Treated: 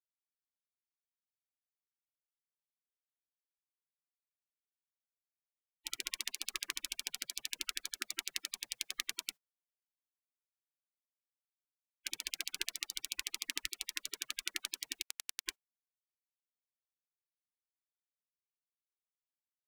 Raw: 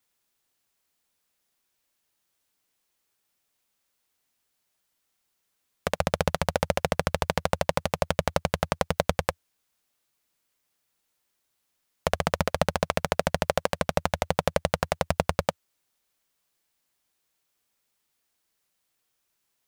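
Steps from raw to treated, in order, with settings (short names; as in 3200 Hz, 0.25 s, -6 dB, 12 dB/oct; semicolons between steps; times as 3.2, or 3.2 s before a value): notch 2300 Hz, Q 23; spectral gate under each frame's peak -20 dB weak; 15.02–15.46 power-law curve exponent 2; gain -1.5 dB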